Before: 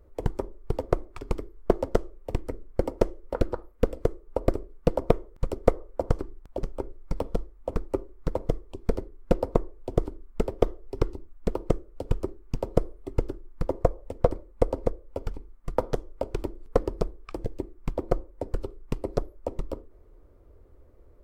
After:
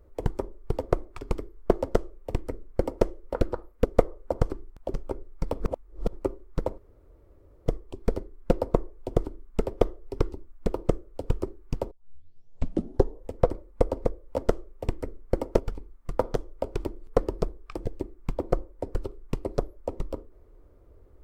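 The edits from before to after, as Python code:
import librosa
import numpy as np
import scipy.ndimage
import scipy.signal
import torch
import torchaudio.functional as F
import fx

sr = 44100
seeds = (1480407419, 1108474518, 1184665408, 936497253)

y = fx.edit(x, sr, fx.duplicate(start_s=1.82, length_s=1.22, to_s=15.17),
    fx.cut(start_s=3.85, length_s=1.69),
    fx.reverse_span(start_s=7.29, length_s=0.53),
    fx.insert_room_tone(at_s=8.47, length_s=0.88),
    fx.tape_start(start_s=12.72, length_s=1.43), tone=tone)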